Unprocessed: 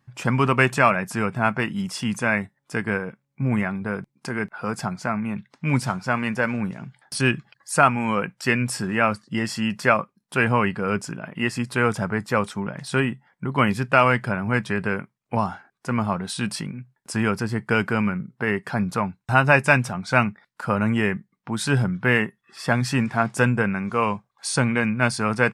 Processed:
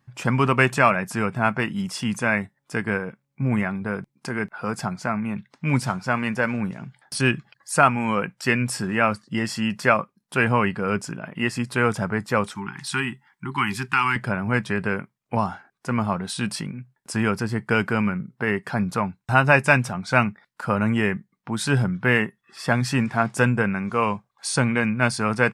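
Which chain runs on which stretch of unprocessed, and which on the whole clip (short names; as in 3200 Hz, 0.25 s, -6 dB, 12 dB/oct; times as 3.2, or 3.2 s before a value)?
12.55–14.16 Chebyshev band-stop 390–780 Hz, order 5 + tilt shelf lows -4.5 dB, about 740 Hz + compressor 1.5:1, threshold -22 dBFS
whole clip: dry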